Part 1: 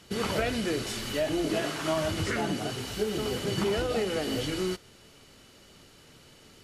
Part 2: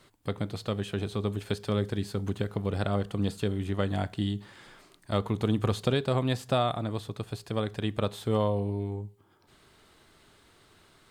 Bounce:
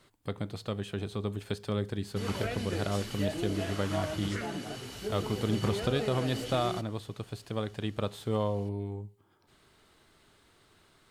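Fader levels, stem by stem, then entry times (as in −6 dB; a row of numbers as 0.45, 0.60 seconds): −7.0, −3.5 decibels; 2.05, 0.00 seconds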